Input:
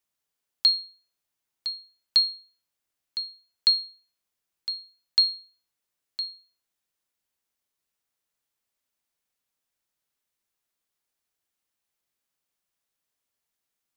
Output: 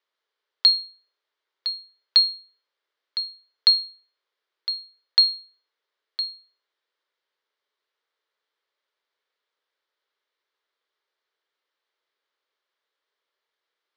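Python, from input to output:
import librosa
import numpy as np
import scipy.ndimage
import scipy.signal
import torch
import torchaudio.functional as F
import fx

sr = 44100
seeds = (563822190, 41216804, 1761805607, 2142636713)

y = fx.cabinet(x, sr, low_hz=410.0, low_slope=24, high_hz=4000.0, hz=(420.0, 740.0, 2600.0), db=(4, -8, -7))
y = F.gain(torch.from_numpy(y), 8.5).numpy()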